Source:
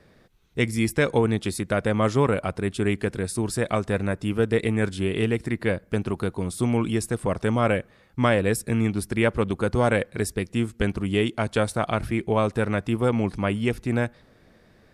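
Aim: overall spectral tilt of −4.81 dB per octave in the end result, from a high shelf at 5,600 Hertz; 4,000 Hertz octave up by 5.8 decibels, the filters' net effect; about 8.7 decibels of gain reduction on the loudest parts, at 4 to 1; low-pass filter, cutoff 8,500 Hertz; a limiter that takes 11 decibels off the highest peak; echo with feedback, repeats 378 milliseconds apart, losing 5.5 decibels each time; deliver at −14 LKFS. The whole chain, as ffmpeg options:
ffmpeg -i in.wav -af "lowpass=8500,equalizer=frequency=4000:width_type=o:gain=5,highshelf=frequency=5600:gain=8,acompressor=threshold=-26dB:ratio=4,alimiter=level_in=0.5dB:limit=-24dB:level=0:latency=1,volume=-0.5dB,aecho=1:1:378|756|1134|1512|1890|2268|2646:0.531|0.281|0.149|0.079|0.0419|0.0222|0.0118,volume=20dB" out.wav

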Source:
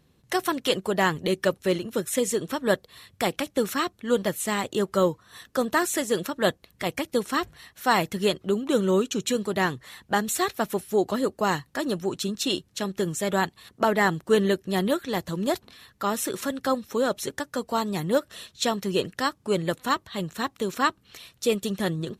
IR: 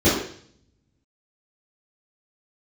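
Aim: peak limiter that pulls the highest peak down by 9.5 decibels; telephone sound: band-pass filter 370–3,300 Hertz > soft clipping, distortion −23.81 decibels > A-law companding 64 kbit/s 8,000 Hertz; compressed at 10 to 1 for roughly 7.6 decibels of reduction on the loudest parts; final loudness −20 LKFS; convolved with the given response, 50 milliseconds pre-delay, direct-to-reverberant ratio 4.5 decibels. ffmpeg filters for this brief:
-filter_complex "[0:a]acompressor=threshold=-24dB:ratio=10,alimiter=limit=-22.5dB:level=0:latency=1,asplit=2[link_01][link_02];[1:a]atrim=start_sample=2205,adelay=50[link_03];[link_02][link_03]afir=irnorm=-1:irlink=0,volume=-25.5dB[link_04];[link_01][link_04]amix=inputs=2:normalize=0,highpass=370,lowpass=3300,asoftclip=threshold=-20.5dB,volume=14dB" -ar 8000 -c:a pcm_alaw

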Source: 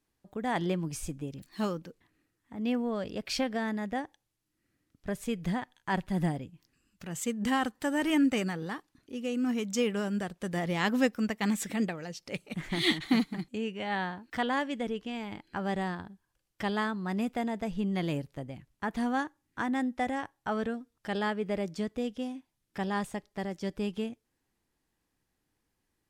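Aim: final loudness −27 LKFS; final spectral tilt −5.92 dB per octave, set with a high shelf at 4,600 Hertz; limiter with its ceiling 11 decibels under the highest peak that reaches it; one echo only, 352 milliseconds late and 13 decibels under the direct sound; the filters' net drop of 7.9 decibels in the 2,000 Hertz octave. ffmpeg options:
ffmpeg -i in.wav -af "equalizer=frequency=2000:width_type=o:gain=-9,highshelf=frequency=4600:gain=-3.5,alimiter=level_in=1dB:limit=-24dB:level=0:latency=1,volume=-1dB,aecho=1:1:352:0.224,volume=8.5dB" out.wav

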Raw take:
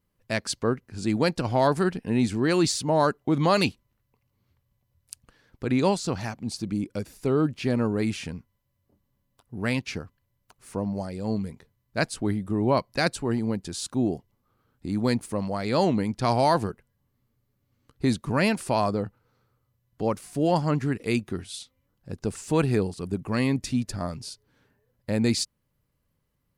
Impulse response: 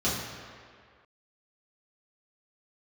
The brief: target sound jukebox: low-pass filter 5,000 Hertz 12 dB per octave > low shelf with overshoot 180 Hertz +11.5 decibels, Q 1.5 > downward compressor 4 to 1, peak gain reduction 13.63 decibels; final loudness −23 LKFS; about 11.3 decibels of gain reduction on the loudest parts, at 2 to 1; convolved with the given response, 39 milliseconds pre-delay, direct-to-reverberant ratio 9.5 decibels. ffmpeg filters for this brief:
-filter_complex "[0:a]acompressor=threshold=-39dB:ratio=2,asplit=2[link_01][link_02];[1:a]atrim=start_sample=2205,adelay=39[link_03];[link_02][link_03]afir=irnorm=-1:irlink=0,volume=-21dB[link_04];[link_01][link_04]amix=inputs=2:normalize=0,lowpass=5000,lowshelf=frequency=180:width_type=q:width=1.5:gain=11.5,acompressor=threshold=-35dB:ratio=4,volume=15.5dB"

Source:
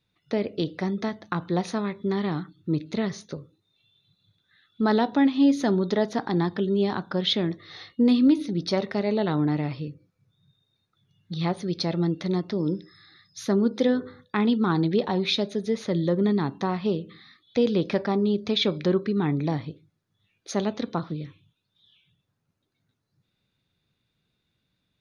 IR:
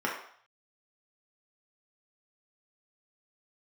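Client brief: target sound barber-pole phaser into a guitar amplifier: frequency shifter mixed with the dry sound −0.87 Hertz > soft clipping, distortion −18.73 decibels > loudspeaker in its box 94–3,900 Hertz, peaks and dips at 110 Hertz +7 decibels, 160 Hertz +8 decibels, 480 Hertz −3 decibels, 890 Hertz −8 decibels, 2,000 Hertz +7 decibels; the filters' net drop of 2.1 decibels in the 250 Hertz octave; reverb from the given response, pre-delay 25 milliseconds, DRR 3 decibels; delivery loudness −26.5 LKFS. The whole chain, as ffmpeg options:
-filter_complex "[0:a]equalizer=frequency=250:width_type=o:gain=-5.5,asplit=2[link_01][link_02];[1:a]atrim=start_sample=2205,adelay=25[link_03];[link_02][link_03]afir=irnorm=-1:irlink=0,volume=-12.5dB[link_04];[link_01][link_04]amix=inputs=2:normalize=0,asplit=2[link_05][link_06];[link_06]afreqshift=-0.87[link_07];[link_05][link_07]amix=inputs=2:normalize=1,asoftclip=threshold=-18dB,highpass=94,equalizer=frequency=110:width_type=q:width=4:gain=7,equalizer=frequency=160:width_type=q:width=4:gain=8,equalizer=frequency=480:width_type=q:width=4:gain=-3,equalizer=frequency=890:width_type=q:width=4:gain=-8,equalizer=frequency=2000:width_type=q:width=4:gain=7,lowpass=frequency=3900:width=0.5412,lowpass=frequency=3900:width=1.3066,volume=3dB"

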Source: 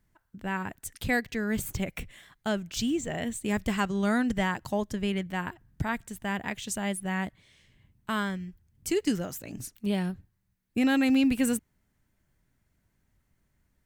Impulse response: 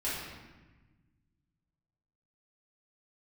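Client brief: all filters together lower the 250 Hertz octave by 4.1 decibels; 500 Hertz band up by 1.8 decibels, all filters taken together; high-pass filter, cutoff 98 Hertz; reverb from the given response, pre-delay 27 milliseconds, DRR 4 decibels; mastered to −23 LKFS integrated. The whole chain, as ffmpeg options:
-filter_complex "[0:a]highpass=98,equalizer=frequency=250:width_type=o:gain=-5.5,equalizer=frequency=500:width_type=o:gain=4,asplit=2[link_01][link_02];[1:a]atrim=start_sample=2205,adelay=27[link_03];[link_02][link_03]afir=irnorm=-1:irlink=0,volume=-10dB[link_04];[link_01][link_04]amix=inputs=2:normalize=0,volume=7.5dB"

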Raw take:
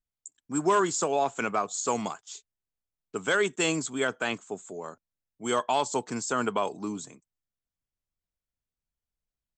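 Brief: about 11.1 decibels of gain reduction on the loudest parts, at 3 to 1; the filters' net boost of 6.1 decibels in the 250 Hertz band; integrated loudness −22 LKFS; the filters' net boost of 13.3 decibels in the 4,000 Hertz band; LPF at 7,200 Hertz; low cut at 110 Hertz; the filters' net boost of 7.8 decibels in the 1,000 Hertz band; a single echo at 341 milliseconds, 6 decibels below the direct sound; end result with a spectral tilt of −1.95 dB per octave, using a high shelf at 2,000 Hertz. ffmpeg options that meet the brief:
ffmpeg -i in.wav -af "highpass=110,lowpass=7200,equalizer=frequency=250:width_type=o:gain=7.5,equalizer=frequency=1000:width_type=o:gain=6.5,highshelf=frequency=2000:gain=8.5,equalizer=frequency=4000:width_type=o:gain=9,acompressor=threshold=-27dB:ratio=3,aecho=1:1:341:0.501,volume=7dB" out.wav

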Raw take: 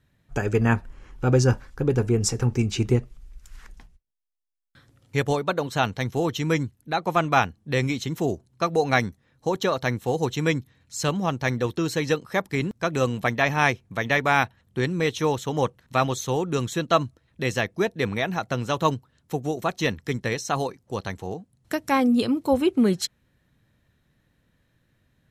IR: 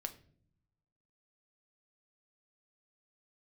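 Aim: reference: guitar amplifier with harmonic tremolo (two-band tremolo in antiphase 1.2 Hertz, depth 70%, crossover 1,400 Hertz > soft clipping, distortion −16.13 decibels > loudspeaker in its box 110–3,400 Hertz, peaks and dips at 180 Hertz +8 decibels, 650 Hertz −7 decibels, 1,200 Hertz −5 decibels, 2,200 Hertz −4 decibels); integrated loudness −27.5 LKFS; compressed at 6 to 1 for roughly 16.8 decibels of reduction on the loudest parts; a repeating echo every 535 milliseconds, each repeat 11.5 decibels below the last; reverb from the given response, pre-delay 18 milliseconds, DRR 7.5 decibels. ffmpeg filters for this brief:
-filter_complex "[0:a]acompressor=threshold=-34dB:ratio=6,aecho=1:1:535|1070|1605:0.266|0.0718|0.0194,asplit=2[link_01][link_02];[1:a]atrim=start_sample=2205,adelay=18[link_03];[link_02][link_03]afir=irnorm=-1:irlink=0,volume=-5.5dB[link_04];[link_01][link_04]amix=inputs=2:normalize=0,acrossover=split=1400[link_05][link_06];[link_05]aeval=exprs='val(0)*(1-0.7/2+0.7/2*cos(2*PI*1.2*n/s))':channel_layout=same[link_07];[link_06]aeval=exprs='val(0)*(1-0.7/2-0.7/2*cos(2*PI*1.2*n/s))':channel_layout=same[link_08];[link_07][link_08]amix=inputs=2:normalize=0,asoftclip=threshold=-31dB,highpass=110,equalizer=frequency=180:width_type=q:width=4:gain=8,equalizer=frequency=650:width_type=q:width=4:gain=-7,equalizer=frequency=1200:width_type=q:width=4:gain=-5,equalizer=frequency=2200:width_type=q:width=4:gain=-4,lowpass=frequency=3400:width=0.5412,lowpass=frequency=3400:width=1.3066,volume=15dB"

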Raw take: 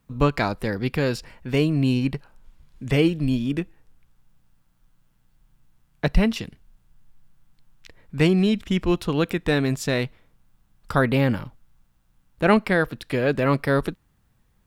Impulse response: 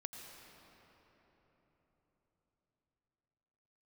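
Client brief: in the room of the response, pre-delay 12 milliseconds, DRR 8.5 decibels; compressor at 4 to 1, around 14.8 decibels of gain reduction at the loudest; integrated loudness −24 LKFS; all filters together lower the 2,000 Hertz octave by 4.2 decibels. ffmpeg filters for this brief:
-filter_complex "[0:a]equalizer=frequency=2000:width_type=o:gain=-5.5,acompressor=threshold=-31dB:ratio=4,asplit=2[link_01][link_02];[1:a]atrim=start_sample=2205,adelay=12[link_03];[link_02][link_03]afir=irnorm=-1:irlink=0,volume=-6dB[link_04];[link_01][link_04]amix=inputs=2:normalize=0,volume=10.5dB"

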